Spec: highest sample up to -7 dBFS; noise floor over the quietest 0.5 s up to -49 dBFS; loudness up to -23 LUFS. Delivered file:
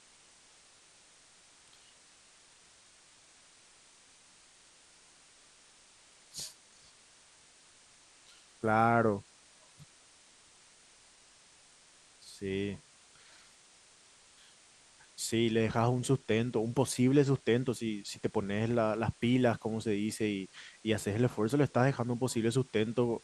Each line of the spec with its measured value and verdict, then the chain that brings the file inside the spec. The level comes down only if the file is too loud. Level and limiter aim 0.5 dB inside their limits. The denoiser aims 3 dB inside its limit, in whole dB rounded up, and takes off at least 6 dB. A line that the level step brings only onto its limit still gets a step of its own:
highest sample -12.5 dBFS: OK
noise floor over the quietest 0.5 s -61 dBFS: OK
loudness -31.5 LUFS: OK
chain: none

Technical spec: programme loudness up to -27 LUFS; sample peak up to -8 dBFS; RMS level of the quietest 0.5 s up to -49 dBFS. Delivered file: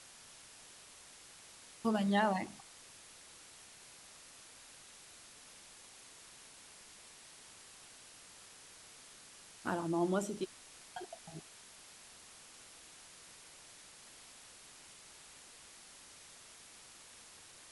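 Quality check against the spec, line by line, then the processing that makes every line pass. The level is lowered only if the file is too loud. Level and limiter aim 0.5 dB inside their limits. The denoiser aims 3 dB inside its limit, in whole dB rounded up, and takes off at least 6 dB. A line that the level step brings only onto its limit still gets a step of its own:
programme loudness -44.0 LUFS: OK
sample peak -18.0 dBFS: OK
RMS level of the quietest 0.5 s -57 dBFS: OK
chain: none

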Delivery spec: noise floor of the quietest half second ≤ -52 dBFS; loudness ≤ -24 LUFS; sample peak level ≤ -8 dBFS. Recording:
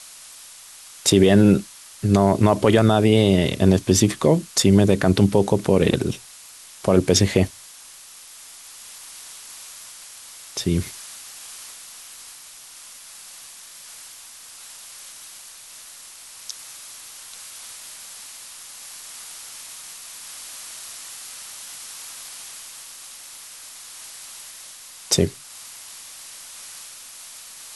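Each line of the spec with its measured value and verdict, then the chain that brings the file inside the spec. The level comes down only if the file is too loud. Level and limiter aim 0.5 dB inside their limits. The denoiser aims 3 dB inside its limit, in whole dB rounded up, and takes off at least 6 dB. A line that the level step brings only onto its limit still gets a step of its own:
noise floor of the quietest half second -44 dBFS: fail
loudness -18.5 LUFS: fail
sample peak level -4.0 dBFS: fail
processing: denoiser 6 dB, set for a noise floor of -44 dBFS; gain -6 dB

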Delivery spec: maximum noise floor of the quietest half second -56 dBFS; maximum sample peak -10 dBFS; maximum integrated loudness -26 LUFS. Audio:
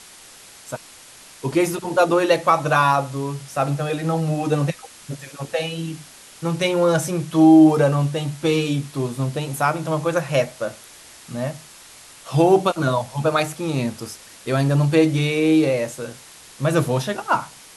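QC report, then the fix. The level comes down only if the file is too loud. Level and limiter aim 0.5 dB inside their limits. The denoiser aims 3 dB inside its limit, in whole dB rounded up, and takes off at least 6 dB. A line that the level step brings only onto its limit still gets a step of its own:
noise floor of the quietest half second -45 dBFS: fail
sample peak -4.5 dBFS: fail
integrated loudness -20.0 LUFS: fail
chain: denoiser 8 dB, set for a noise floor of -45 dBFS; gain -6.5 dB

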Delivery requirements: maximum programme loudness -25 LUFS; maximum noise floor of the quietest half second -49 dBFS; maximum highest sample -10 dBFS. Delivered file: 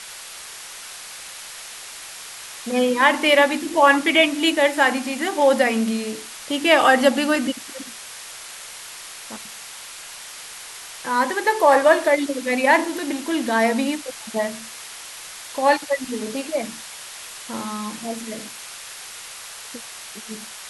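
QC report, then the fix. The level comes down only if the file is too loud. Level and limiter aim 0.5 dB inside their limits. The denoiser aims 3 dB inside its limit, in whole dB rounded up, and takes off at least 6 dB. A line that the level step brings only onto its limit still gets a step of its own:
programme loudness -19.5 LUFS: fail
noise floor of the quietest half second -38 dBFS: fail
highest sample -2.5 dBFS: fail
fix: denoiser 8 dB, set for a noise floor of -38 dBFS; gain -6 dB; limiter -10.5 dBFS

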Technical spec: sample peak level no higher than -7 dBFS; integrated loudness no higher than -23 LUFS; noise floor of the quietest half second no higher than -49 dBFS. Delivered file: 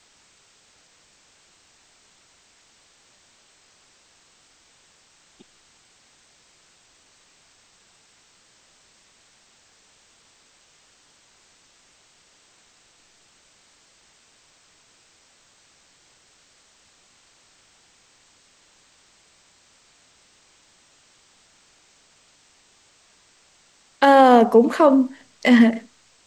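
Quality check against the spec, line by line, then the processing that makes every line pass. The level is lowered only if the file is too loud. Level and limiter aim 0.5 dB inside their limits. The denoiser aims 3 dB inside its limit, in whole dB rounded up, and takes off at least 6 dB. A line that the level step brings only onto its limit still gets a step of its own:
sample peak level -2.5 dBFS: fail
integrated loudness -16.0 LUFS: fail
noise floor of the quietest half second -58 dBFS: OK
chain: gain -7.5 dB

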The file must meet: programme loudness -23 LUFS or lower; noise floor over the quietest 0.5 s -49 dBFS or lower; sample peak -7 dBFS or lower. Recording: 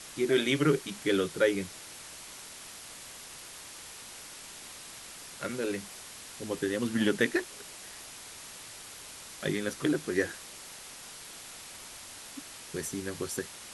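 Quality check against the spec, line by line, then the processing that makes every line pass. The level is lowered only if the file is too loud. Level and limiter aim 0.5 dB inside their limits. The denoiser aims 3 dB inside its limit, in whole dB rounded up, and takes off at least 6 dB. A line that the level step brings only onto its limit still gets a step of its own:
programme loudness -34.0 LUFS: OK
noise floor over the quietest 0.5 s -47 dBFS: fail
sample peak -12.0 dBFS: OK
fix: denoiser 6 dB, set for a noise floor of -47 dBFS

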